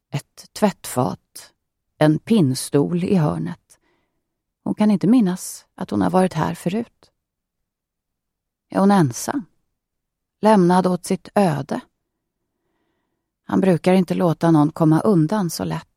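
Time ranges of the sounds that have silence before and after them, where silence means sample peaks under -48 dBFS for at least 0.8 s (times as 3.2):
4.66–7.06
8.71–9.46
10.42–11.84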